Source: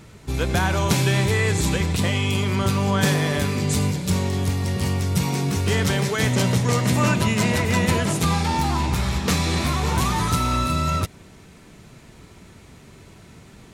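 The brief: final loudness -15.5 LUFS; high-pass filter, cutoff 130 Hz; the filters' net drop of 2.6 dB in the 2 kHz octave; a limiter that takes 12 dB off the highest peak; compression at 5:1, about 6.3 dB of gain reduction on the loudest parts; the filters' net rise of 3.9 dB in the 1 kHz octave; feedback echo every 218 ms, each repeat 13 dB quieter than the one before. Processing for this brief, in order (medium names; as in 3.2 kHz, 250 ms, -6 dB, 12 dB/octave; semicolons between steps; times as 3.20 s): high-pass 130 Hz; peaking EQ 1 kHz +6 dB; peaking EQ 2 kHz -5 dB; compression 5:1, threshold -23 dBFS; peak limiter -24 dBFS; feedback delay 218 ms, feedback 22%, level -13 dB; trim +17 dB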